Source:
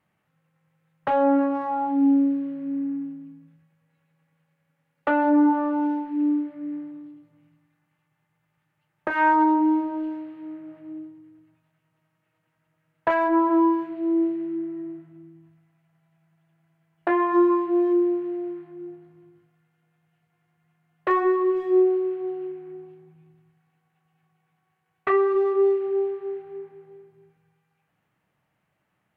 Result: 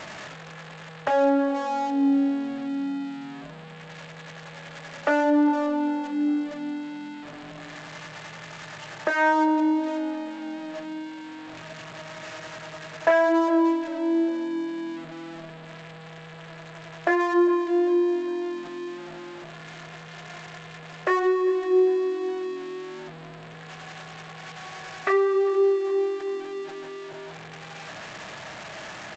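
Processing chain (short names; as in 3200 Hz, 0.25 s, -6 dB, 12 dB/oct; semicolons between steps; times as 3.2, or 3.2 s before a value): zero-crossing step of -33.5 dBFS; low shelf 240 Hz -11.5 dB; small resonant body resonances 640/1700 Hz, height 7 dB; on a send: frequency-shifting echo 0.4 s, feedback 51%, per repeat -44 Hz, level -22.5 dB; on the sum: dynamic EQ 1000 Hz, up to -6 dB, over -36 dBFS, Q 1.9; gain +2 dB; G.722 64 kbps 16000 Hz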